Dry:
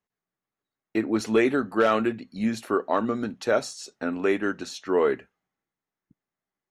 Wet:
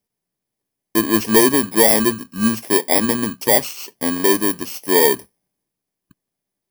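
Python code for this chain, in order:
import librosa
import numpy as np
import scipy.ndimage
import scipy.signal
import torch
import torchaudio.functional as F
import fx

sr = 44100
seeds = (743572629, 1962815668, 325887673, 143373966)

y = fx.bit_reversed(x, sr, seeds[0], block=32)
y = y * librosa.db_to_amplitude(8.0)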